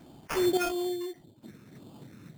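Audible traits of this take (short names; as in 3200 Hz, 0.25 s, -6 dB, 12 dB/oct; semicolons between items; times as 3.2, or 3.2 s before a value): phasing stages 8, 1.7 Hz, lowest notch 740–2000 Hz; aliases and images of a low sample rate 3900 Hz, jitter 0%; random-step tremolo, depth 70%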